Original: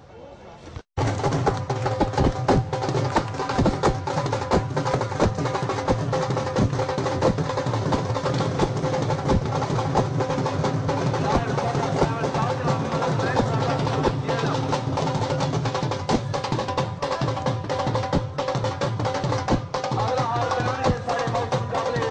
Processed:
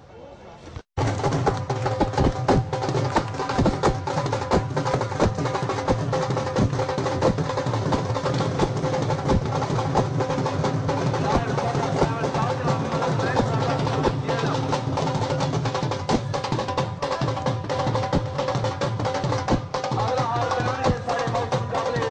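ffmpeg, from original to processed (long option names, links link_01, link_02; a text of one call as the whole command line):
ffmpeg -i in.wav -filter_complex "[0:a]asplit=2[link_01][link_02];[link_02]afade=type=in:start_time=17.13:duration=0.01,afade=type=out:start_time=18.12:duration=0.01,aecho=0:1:560|1120|1680|2240|2800:0.281838|0.126827|0.0570723|0.0256825|0.0115571[link_03];[link_01][link_03]amix=inputs=2:normalize=0" out.wav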